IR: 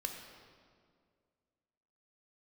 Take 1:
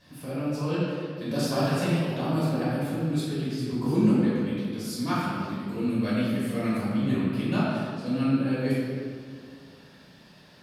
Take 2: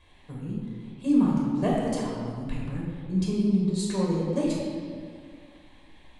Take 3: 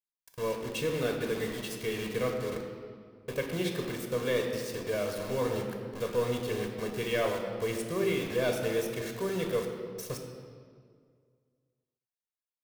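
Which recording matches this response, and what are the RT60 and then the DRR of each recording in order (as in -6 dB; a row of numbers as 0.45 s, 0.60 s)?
3; 2.0 s, 2.0 s, 2.1 s; -10.5 dB, -4.5 dB, 3.0 dB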